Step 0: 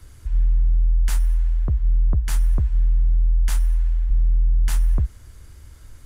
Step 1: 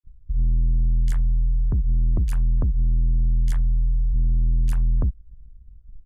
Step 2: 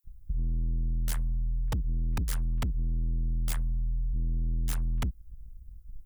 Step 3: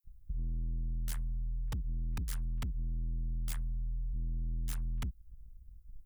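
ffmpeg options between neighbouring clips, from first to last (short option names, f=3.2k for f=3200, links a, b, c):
-filter_complex "[0:a]anlmdn=251,asoftclip=type=tanh:threshold=-19dB,acrossover=split=2600[a][b];[a]adelay=40[c];[c][b]amix=inputs=2:normalize=0,volume=3dB"
-filter_complex "[0:a]aemphasis=mode=production:type=75fm,acrossover=split=190[a][b];[a]acompressor=threshold=-28dB:ratio=6[c];[b]aeval=exprs='(mod(23.7*val(0)+1,2)-1)/23.7':c=same[d];[c][d]amix=inputs=2:normalize=0"
-af "adynamicequalizer=threshold=0.002:dfrequency=570:dqfactor=0.84:tfrequency=570:tqfactor=0.84:attack=5:release=100:ratio=0.375:range=3:mode=cutabove:tftype=bell,volume=-6.5dB"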